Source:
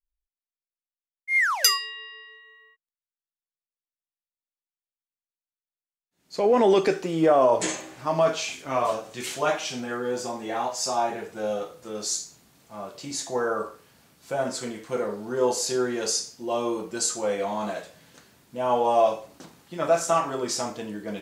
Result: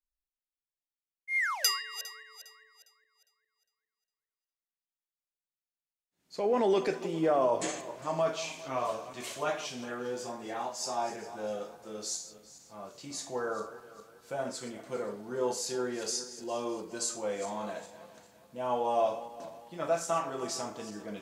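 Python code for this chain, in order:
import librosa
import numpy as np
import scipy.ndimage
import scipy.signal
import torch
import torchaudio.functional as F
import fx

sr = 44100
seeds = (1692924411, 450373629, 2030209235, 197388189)

y = fx.reverse_delay_fb(x, sr, ms=203, feedback_pct=57, wet_db=-14.0)
y = y * 10.0 ** (-8.0 / 20.0)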